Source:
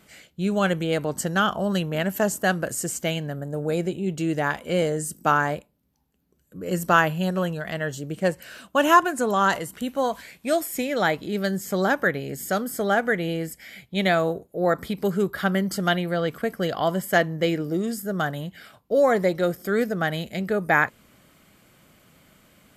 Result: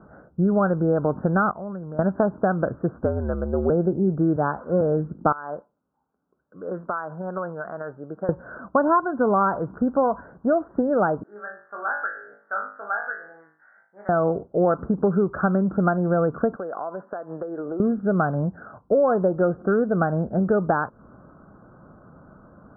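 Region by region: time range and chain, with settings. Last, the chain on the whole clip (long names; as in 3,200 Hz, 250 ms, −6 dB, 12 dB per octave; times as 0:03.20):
0:01.51–0:01.99: first-order pre-emphasis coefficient 0.8 + downward compressor 2 to 1, threshold −39 dBFS
0:03.04–0:03.70: high-pass filter 230 Hz 6 dB per octave + frequency shifter −72 Hz
0:04.36–0:04.81: spike at every zero crossing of −19 dBFS + multiband upward and downward expander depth 100%
0:05.32–0:08.29: high-pass filter 1,200 Hz 6 dB per octave + downward compressor 8 to 1, threshold −31 dBFS + linearly interpolated sample-rate reduction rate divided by 2×
0:11.23–0:14.09: high-pass with resonance 2,000 Hz, resonance Q 2.2 + head-to-tape spacing loss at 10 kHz 30 dB + flutter between parallel walls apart 3.3 metres, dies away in 0.45 s
0:16.56–0:17.80: high-pass filter 440 Hz + downward compressor 10 to 1, threshold −35 dBFS
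whole clip: downward compressor 5 to 1, threshold −26 dBFS; Butterworth low-pass 1,500 Hz 96 dB per octave; level +9 dB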